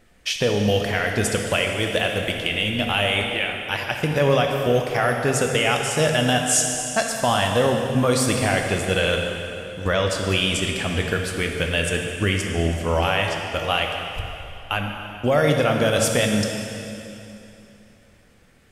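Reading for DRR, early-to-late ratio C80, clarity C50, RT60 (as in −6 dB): 2.0 dB, 4.0 dB, 3.0 dB, 3.0 s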